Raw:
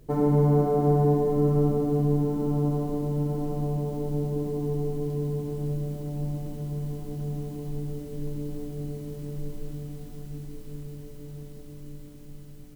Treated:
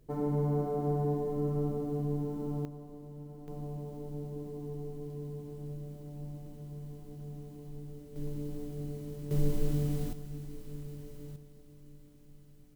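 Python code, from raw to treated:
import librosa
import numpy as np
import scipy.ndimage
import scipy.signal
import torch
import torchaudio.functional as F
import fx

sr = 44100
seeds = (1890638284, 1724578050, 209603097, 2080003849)

y = fx.gain(x, sr, db=fx.steps((0.0, -9.5), (2.65, -19.0), (3.48, -12.0), (8.16, -5.0), (9.31, 6.0), (10.13, -4.0), (11.36, -12.0)))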